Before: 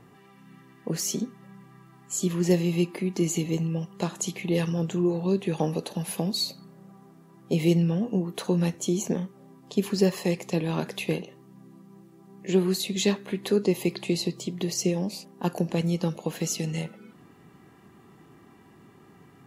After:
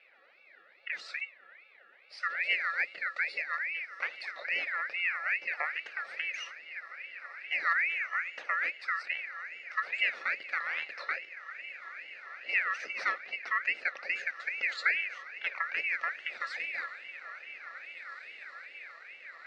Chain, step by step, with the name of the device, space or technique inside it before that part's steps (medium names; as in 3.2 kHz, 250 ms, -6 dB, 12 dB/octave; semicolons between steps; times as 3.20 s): 14.37–15.01 s: rippled EQ curve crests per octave 0.82, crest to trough 13 dB; echo that smears into a reverb 1835 ms, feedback 64%, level -13 dB; voice changer toy (ring modulator with a swept carrier 2 kHz, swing 25%, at 2.4 Hz; cabinet simulation 440–3900 Hz, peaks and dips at 540 Hz +9 dB, 1 kHz -9 dB, 3.2 kHz -9 dB); trim -3.5 dB